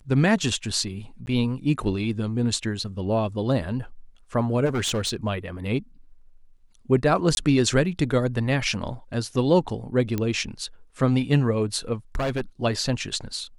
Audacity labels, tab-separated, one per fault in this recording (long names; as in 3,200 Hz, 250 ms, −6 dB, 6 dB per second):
1.260000	1.270000	drop-out
4.650000	5.160000	clipping −21 dBFS
7.350000	7.370000	drop-out 21 ms
10.180000	10.180000	click −13 dBFS
12.150000	12.410000	clipping −22 dBFS